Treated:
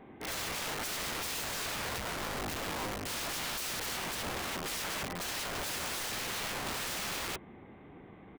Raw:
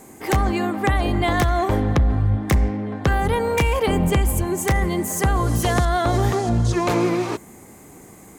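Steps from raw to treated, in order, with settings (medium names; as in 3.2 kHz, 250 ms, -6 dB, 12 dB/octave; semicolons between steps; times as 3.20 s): resampled via 8 kHz; integer overflow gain 25 dB; trim -7 dB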